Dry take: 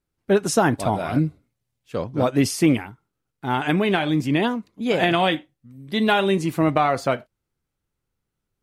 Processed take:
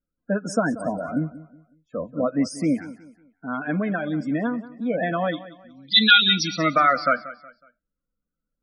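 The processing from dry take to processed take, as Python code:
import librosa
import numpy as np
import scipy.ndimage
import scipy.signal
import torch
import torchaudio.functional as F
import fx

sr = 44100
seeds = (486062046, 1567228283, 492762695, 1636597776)

y = fx.spec_box(x, sr, start_s=5.76, length_s=1.9, low_hz=1200.0, high_hz=5900.0, gain_db=11)
y = fx.band_shelf(y, sr, hz=4000.0, db=15.5, octaves=1.7, at=(5.33, 6.7), fade=0.02)
y = fx.spec_topn(y, sr, count=32)
y = fx.fixed_phaser(y, sr, hz=570.0, stages=8)
y = fx.echo_feedback(y, sr, ms=184, feedback_pct=34, wet_db=-17)
y = y * 10.0 ** (-1.0 / 20.0)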